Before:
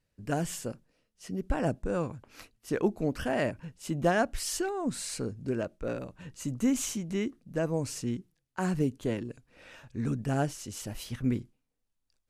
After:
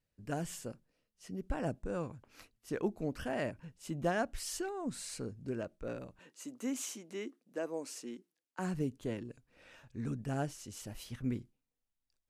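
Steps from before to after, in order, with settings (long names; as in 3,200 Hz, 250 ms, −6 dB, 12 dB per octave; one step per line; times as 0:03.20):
0:06.19–0:08.59: high-pass filter 270 Hz 24 dB per octave
level −7 dB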